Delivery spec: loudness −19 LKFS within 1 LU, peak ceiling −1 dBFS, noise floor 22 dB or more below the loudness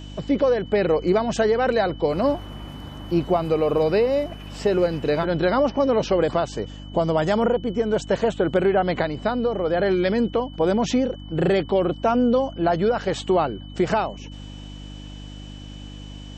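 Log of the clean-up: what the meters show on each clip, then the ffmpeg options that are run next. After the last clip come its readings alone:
mains hum 50 Hz; hum harmonics up to 300 Hz; level of the hum −36 dBFS; interfering tone 3,000 Hz; level of the tone −46 dBFS; integrated loudness −22.0 LKFS; sample peak −9.0 dBFS; target loudness −19.0 LKFS
→ -af "bandreject=frequency=50:width_type=h:width=4,bandreject=frequency=100:width_type=h:width=4,bandreject=frequency=150:width_type=h:width=4,bandreject=frequency=200:width_type=h:width=4,bandreject=frequency=250:width_type=h:width=4,bandreject=frequency=300:width_type=h:width=4"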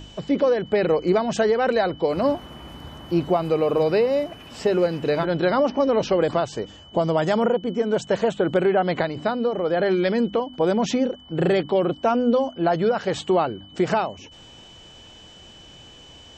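mains hum none found; interfering tone 3,000 Hz; level of the tone −46 dBFS
→ -af "bandreject=frequency=3000:width=30"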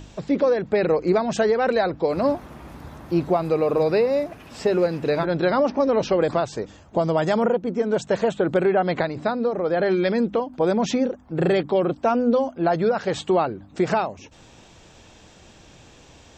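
interfering tone none found; integrated loudness −22.0 LKFS; sample peak −9.0 dBFS; target loudness −19.0 LKFS
→ -af "volume=3dB"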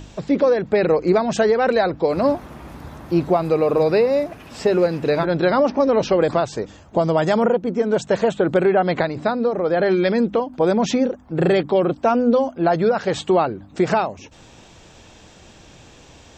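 integrated loudness −19.0 LKFS; sample peak −6.0 dBFS; background noise floor −47 dBFS

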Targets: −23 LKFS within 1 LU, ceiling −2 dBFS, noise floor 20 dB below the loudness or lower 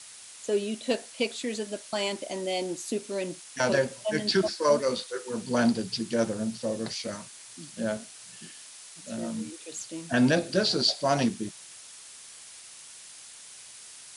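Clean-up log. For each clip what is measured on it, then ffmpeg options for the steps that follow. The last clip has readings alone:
background noise floor −48 dBFS; target noise floor −49 dBFS; integrated loudness −28.5 LKFS; sample peak −11.5 dBFS; target loudness −23.0 LKFS
→ -af "afftdn=noise_reduction=6:noise_floor=-48"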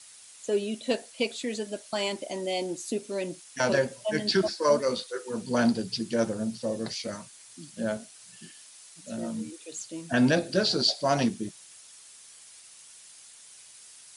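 background noise floor −51 dBFS; integrated loudness −29.0 LKFS; sample peak −11.5 dBFS; target loudness −23.0 LKFS
→ -af "volume=6dB"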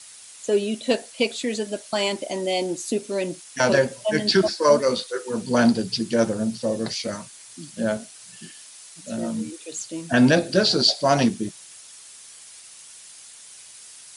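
integrated loudness −23.0 LKFS; sample peak −5.5 dBFS; background noise floor −45 dBFS

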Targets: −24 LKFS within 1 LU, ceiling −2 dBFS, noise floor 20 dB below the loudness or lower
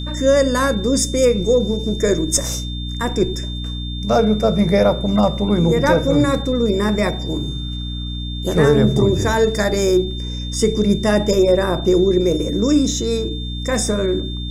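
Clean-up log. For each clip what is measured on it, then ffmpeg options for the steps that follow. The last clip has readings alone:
mains hum 60 Hz; hum harmonics up to 300 Hz; level of the hum −24 dBFS; interfering tone 3,600 Hz; level of the tone −31 dBFS; integrated loudness −18.0 LKFS; sample peak −3.0 dBFS; target loudness −24.0 LKFS
→ -af "bandreject=frequency=60:width_type=h:width=4,bandreject=frequency=120:width_type=h:width=4,bandreject=frequency=180:width_type=h:width=4,bandreject=frequency=240:width_type=h:width=4,bandreject=frequency=300:width_type=h:width=4"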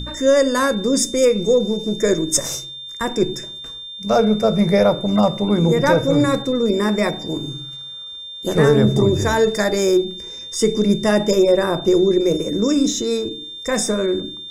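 mains hum none found; interfering tone 3,600 Hz; level of the tone −31 dBFS
→ -af "bandreject=frequency=3600:width=30"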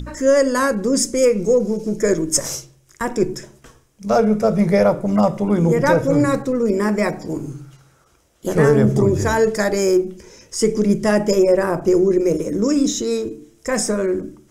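interfering tone none found; integrated loudness −18.0 LKFS; sample peak −3.5 dBFS; target loudness −24.0 LKFS
→ -af "volume=-6dB"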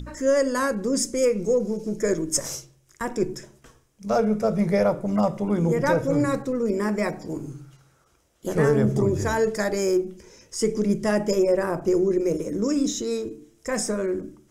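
integrated loudness −24.0 LKFS; sample peak −9.5 dBFS; background noise floor −62 dBFS

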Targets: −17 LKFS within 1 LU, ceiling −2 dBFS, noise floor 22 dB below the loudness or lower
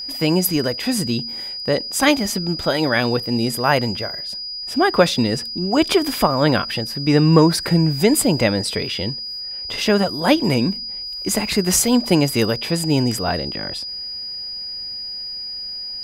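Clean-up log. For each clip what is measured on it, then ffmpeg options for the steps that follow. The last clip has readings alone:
interfering tone 4,900 Hz; level of the tone −27 dBFS; integrated loudness −19.5 LKFS; sample peak −1.5 dBFS; target loudness −17.0 LKFS
→ -af "bandreject=frequency=4900:width=30"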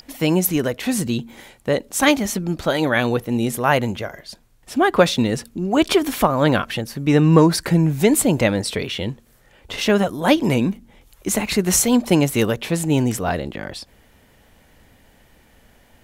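interfering tone none found; integrated loudness −19.0 LKFS; sample peak −2.0 dBFS; target loudness −17.0 LKFS
→ -af "volume=2dB,alimiter=limit=-2dB:level=0:latency=1"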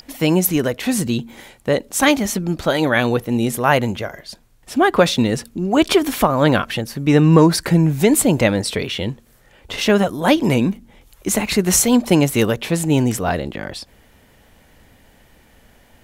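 integrated loudness −17.5 LKFS; sample peak −2.0 dBFS; background noise floor −52 dBFS

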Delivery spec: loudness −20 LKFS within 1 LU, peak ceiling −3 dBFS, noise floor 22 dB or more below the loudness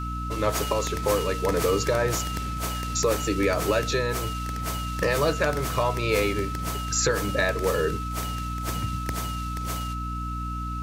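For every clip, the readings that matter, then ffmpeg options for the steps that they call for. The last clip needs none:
mains hum 60 Hz; hum harmonics up to 300 Hz; level of the hum −30 dBFS; interfering tone 1,300 Hz; level of the tone −33 dBFS; integrated loudness −26.5 LKFS; sample peak −11.0 dBFS; target loudness −20.0 LKFS
→ -af "bandreject=frequency=60:width_type=h:width=4,bandreject=frequency=120:width_type=h:width=4,bandreject=frequency=180:width_type=h:width=4,bandreject=frequency=240:width_type=h:width=4,bandreject=frequency=300:width_type=h:width=4"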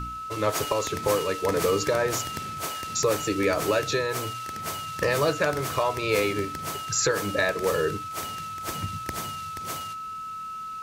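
mains hum none found; interfering tone 1,300 Hz; level of the tone −33 dBFS
→ -af "bandreject=frequency=1300:width=30"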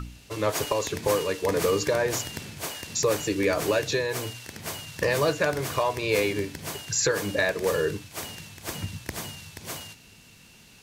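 interfering tone none found; integrated loudness −27.0 LKFS; sample peak −12.5 dBFS; target loudness −20.0 LKFS
→ -af "volume=7dB"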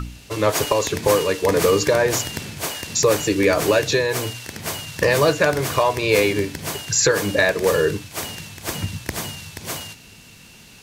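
integrated loudness −20.0 LKFS; sample peak −5.5 dBFS; background noise floor −46 dBFS

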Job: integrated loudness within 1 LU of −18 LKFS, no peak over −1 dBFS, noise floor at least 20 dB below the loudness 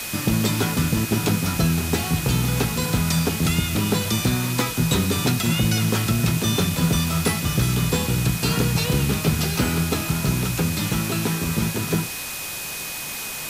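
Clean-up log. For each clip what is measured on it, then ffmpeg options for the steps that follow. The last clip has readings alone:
interfering tone 2,500 Hz; level of the tone −36 dBFS; background noise floor −31 dBFS; target noise floor −42 dBFS; integrated loudness −22.0 LKFS; sample peak −7.0 dBFS; target loudness −18.0 LKFS
→ -af "bandreject=frequency=2500:width=30"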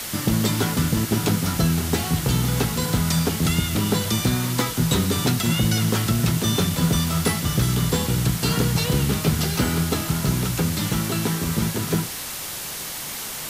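interfering tone none found; background noise floor −32 dBFS; target noise floor −42 dBFS
→ -af "afftdn=noise_reduction=10:noise_floor=-32"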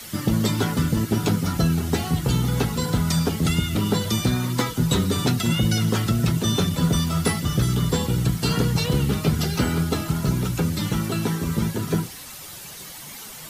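background noise floor −39 dBFS; target noise floor −43 dBFS
→ -af "afftdn=noise_reduction=6:noise_floor=-39"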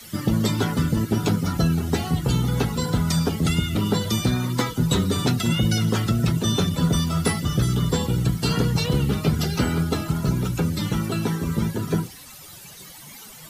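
background noise floor −43 dBFS; integrated loudness −23.0 LKFS; sample peak −7.0 dBFS; target loudness −18.0 LKFS
→ -af "volume=5dB"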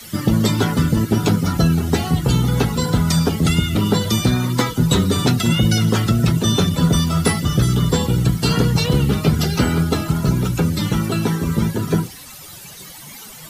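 integrated loudness −18.0 LKFS; sample peak −2.0 dBFS; background noise floor −38 dBFS

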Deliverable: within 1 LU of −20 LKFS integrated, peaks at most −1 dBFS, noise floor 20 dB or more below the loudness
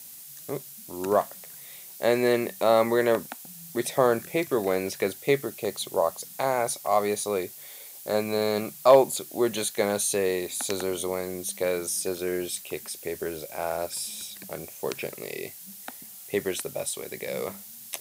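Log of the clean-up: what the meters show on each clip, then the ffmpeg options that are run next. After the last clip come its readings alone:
background noise floor −45 dBFS; target noise floor −47 dBFS; integrated loudness −27.0 LKFS; sample peak −4.0 dBFS; target loudness −20.0 LKFS
→ -af "afftdn=noise_reduction=6:noise_floor=-45"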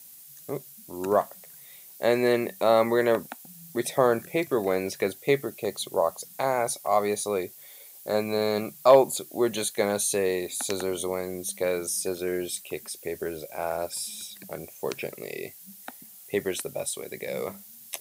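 background noise floor −48 dBFS; integrated loudness −27.0 LKFS; sample peak −4.0 dBFS; target loudness −20.0 LKFS
→ -af "volume=7dB,alimiter=limit=-1dB:level=0:latency=1"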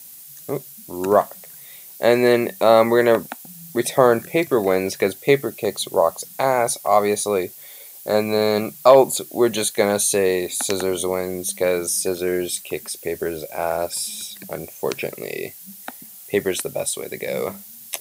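integrated loudness −20.5 LKFS; sample peak −1.0 dBFS; background noise floor −41 dBFS

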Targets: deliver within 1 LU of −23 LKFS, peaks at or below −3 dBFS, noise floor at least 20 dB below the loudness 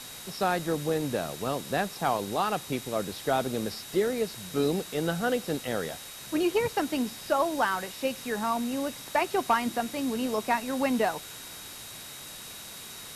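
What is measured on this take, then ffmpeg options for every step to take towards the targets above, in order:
interfering tone 3,800 Hz; level of the tone −48 dBFS; background noise floor −43 dBFS; target noise floor −50 dBFS; integrated loudness −29.5 LKFS; sample peak −13.5 dBFS; target loudness −23.0 LKFS
→ -af "bandreject=frequency=3800:width=30"
-af "afftdn=noise_reduction=7:noise_floor=-43"
-af "volume=6.5dB"

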